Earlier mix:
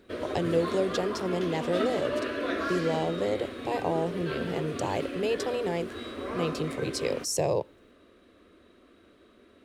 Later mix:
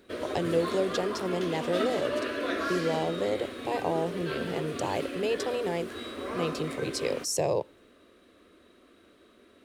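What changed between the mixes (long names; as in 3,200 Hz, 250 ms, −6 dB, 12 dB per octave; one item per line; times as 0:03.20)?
background: add high-shelf EQ 5,700 Hz +6.5 dB
master: add low-shelf EQ 150 Hz −5 dB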